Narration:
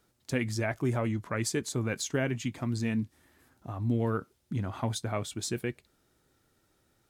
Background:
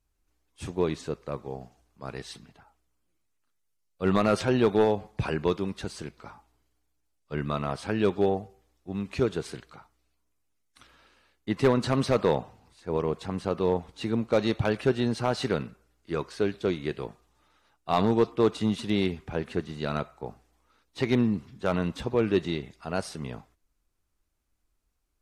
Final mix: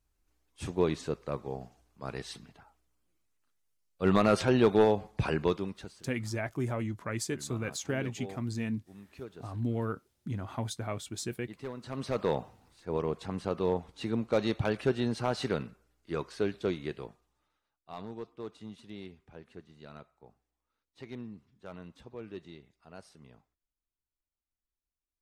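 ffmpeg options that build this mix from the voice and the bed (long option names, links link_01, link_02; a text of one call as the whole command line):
ffmpeg -i stem1.wav -i stem2.wav -filter_complex "[0:a]adelay=5750,volume=-3.5dB[link_01];[1:a]volume=13.5dB,afade=type=out:start_time=5.37:duration=0.64:silence=0.133352,afade=type=in:start_time=11.82:duration=0.6:silence=0.188365,afade=type=out:start_time=16.66:duration=1.02:silence=0.177828[link_02];[link_01][link_02]amix=inputs=2:normalize=0" out.wav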